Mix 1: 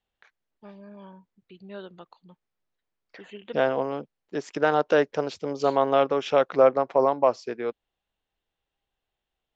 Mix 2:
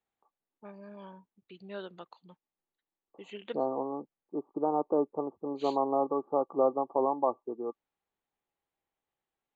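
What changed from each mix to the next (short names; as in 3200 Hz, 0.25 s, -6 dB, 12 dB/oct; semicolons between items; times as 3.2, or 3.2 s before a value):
second voice: add rippled Chebyshev low-pass 1200 Hz, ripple 9 dB; master: add low shelf 130 Hz -11.5 dB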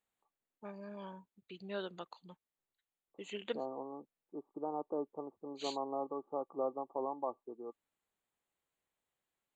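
second voice -10.5 dB; master: remove air absorption 110 m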